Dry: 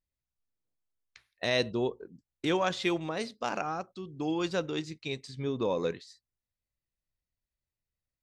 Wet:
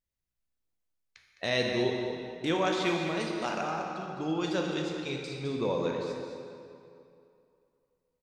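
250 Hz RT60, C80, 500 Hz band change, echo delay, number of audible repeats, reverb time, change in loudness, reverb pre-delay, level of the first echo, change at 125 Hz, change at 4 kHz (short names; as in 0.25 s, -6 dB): 2.5 s, 2.5 dB, +1.0 dB, 0.21 s, 1, 2.6 s, +0.5 dB, 12 ms, -9.0 dB, +1.5 dB, +1.0 dB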